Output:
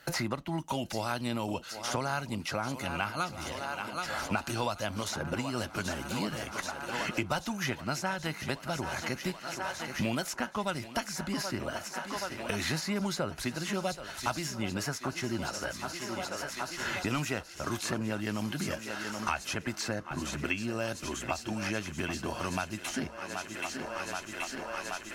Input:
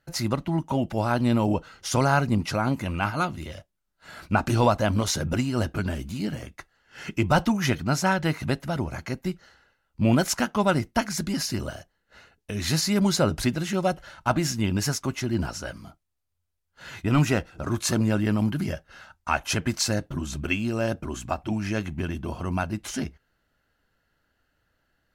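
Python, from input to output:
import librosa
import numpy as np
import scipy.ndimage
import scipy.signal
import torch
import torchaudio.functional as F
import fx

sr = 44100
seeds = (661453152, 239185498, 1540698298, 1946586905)

y = fx.low_shelf(x, sr, hz=410.0, db=-8.5)
y = fx.echo_thinned(y, sr, ms=778, feedback_pct=79, hz=270.0, wet_db=-15)
y = fx.band_squash(y, sr, depth_pct=100)
y = y * librosa.db_to_amplitude(-5.0)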